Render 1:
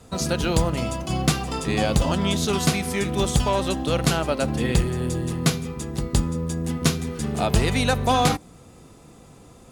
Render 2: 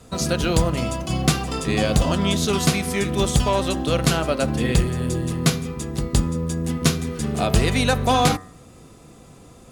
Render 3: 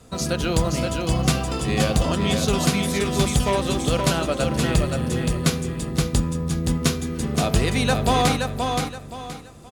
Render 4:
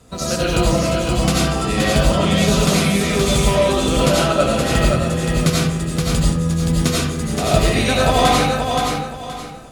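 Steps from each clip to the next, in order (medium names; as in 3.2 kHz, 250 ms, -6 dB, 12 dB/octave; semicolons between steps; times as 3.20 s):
band-stop 870 Hz, Q 12; de-hum 93.23 Hz, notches 22; trim +2 dB
feedback delay 523 ms, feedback 29%, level -4.5 dB; trim -2 dB
algorithmic reverb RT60 0.61 s, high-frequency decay 0.65×, pre-delay 50 ms, DRR -5 dB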